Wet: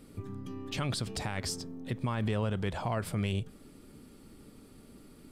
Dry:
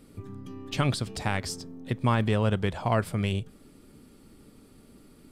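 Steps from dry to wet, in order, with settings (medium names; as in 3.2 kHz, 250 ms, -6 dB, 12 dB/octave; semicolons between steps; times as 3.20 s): peak limiter -23.5 dBFS, peak gain reduction 10.5 dB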